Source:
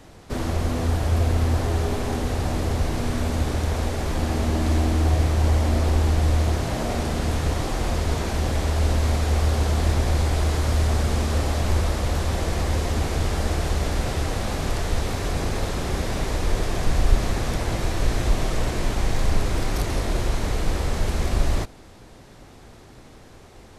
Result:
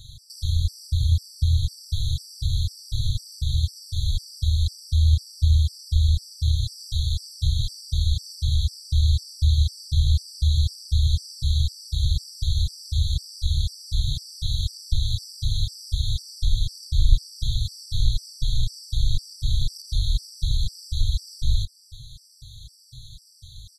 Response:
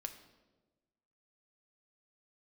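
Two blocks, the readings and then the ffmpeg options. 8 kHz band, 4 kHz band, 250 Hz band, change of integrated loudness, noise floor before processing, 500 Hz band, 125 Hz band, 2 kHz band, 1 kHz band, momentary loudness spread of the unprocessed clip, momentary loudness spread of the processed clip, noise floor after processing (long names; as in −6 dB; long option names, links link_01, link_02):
−4.5 dB, +4.0 dB, below −15 dB, −1.5 dB, −46 dBFS, below −40 dB, −0.5 dB, below −40 dB, below −40 dB, 5 LU, 7 LU, −50 dBFS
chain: -filter_complex "[0:a]acrossover=split=4900[link_01][link_02];[link_02]acompressor=threshold=-46dB:ratio=4:attack=1:release=60[link_03];[link_01][link_03]amix=inputs=2:normalize=0,afftfilt=real='re*(1-between(b*sr/4096,140,3200))':imag='im*(1-between(b*sr/4096,140,3200))':win_size=4096:overlap=0.75,asplit=2[link_04][link_05];[link_05]acompressor=threshold=-29dB:ratio=10,volume=2dB[link_06];[link_04][link_06]amix=inputs=2:normalize=0,equalizer=frequency=500:width_type=o:width=0.33:gain=8,equalizer=frequency=2000:width_type=o:width=0.33:gain=3,equalizer=frequency=4000:width_type=o:width=0.33:gain=10,asplit=2[link_07][link_08];[link_08]adelay=392,lowpass=frequency=2500:poles=1,volume=-22.5dB,asplit=2[link_09][link_10];[link_10]adelay=392,lowpass=frequency=2500:poles=1,volume=0.3[link_11];[link_09][link_11]amix=inputs=2:normalize=0[link_12];[link_07][link_12]amix=inputs=2:normalize=0,afftfilt=real='re*gt(sin(2*PI*2*pts/sr)*(1-2*mod(floor(b*sr/1024/1500),2)),0)':imag='im*gt(sin(2*PI*2*pts/sr)*(1-2*mod(floor(b*sr/1024/1500),2)),0)':win_size=1024:overlap=0.75"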